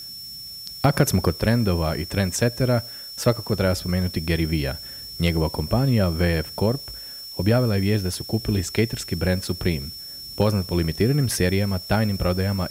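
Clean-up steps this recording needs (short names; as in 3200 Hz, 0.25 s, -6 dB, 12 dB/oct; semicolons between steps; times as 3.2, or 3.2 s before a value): clip repair -8 dBFS; notch 5400 Hz, Q 30; noise print and reduce 30 dB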